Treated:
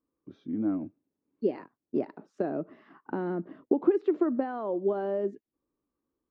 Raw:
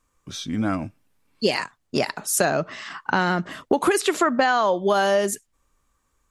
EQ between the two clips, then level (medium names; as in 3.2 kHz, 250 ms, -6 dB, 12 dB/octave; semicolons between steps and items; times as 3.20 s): band-pass filter 320 Hz, Q 2.6; distance through air 190 m; 0.0 dB